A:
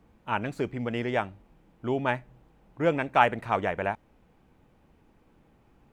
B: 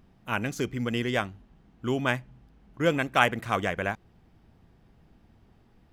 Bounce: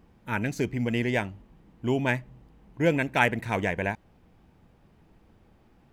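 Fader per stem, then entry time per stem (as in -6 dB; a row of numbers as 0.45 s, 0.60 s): -1.0 dB, -2.5 dB; 0.00 s, 0.00 s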